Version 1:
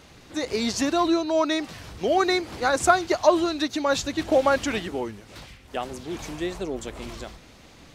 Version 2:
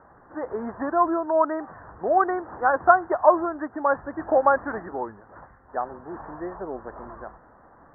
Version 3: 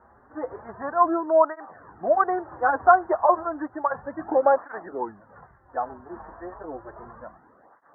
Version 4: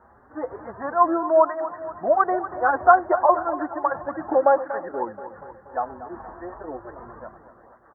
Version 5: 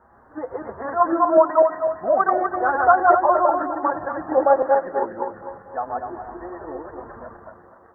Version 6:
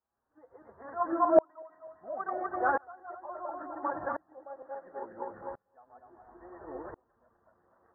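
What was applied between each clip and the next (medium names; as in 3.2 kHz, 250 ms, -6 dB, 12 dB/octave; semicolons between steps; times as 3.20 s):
steep low-pass 1.8 kHz 96 dB/octave; peaking EQ 950 Hz +14 dB 1.9 oct; trim -8.5 dB
dynamic bell 700 Hz, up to +4 dB, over -32 dBFS, Q 0.84; cancelling through-zero flanger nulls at 0.32 Hz, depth 7.1 ms
feedback delay 239 ms, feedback 58%, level -13 dB; trim +1.5 dB
backward echo that repeats 125 ms, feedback 46%, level -1 dB; trim -1 dB
sawtooth tremolo in dB swelling 0.72 Hz, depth 33 dB; trim -4.5 dB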